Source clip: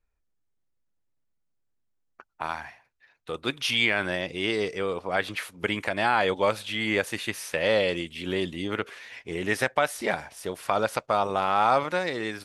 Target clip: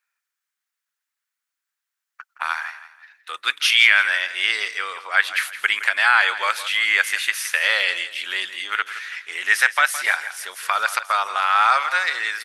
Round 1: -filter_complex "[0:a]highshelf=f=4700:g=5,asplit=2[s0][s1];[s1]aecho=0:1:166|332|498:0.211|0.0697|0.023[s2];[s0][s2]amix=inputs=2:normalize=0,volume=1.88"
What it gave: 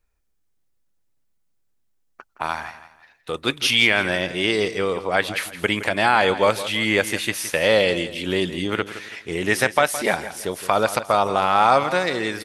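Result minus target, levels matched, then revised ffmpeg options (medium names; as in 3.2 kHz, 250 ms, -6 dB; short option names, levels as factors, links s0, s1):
2 kHz band -4.0 dB
-filter_complex "[0:a]highpass=f=1500:t=q:w=2.1,highshelf=f=4700:g=5,asplit=2[s0][s1];[s1]aecho=0:1:166|332|498:0.211|0.0697|0.023[s2];[s0][s2]amix=inputs=2:normalize=0,volume=1.88"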